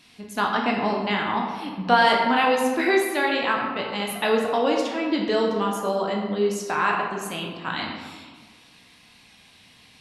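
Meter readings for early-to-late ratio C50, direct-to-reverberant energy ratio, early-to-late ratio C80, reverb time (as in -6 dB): 3.0 dB, -1.0 dB, 4.5 dB, 1.5 s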